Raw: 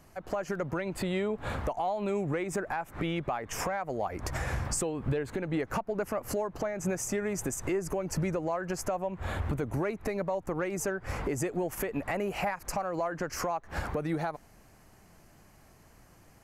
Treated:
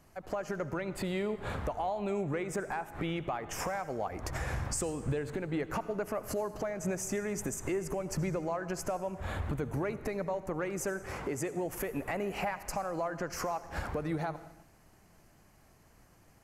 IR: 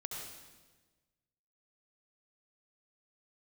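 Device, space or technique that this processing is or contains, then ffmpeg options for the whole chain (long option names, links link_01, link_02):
keyed gated reverb: -filter_complex "[0:a]asplit=3[link_01][link_02][link_03];[1:a]atrim=start_sample=2205[link_04];[link_02][link_04]afir=irnorm=-1:irlink=0[link_05];[link_03]apad=whole_len=724728[link_06];[link_05][link_06]sidechaingate=range=-33dB:threshold=-55dB:ratio=16:detection=peak,volume=-9dB[link_07];[link_01][link_07]amix=inputs=2:normalize=0,asettb=1/sr,asplit=3[link_08][link_09][link_10];[link_08]atrim=end=11.064[link_11];[link_09]atrim=start=11.06:end=11.66,asetpts=PTS-STARTPTS,afade=type=in:duration=0.004:curve=qsin,afade=type=out:start_time=0.596:duration=0.004:curve=qsin,highpass=frequency=140:poles=1[link_12];[link_10]atrim=start=11.656[link_13];[link_11][link_12]acrossfade=duration=0.004:curve1=hsin:curve2=qsin[link_14];[link_14][link_13]acrossfade=duration=0.004:curve1=qsin:curve2=hsin,volume=-4.5dB"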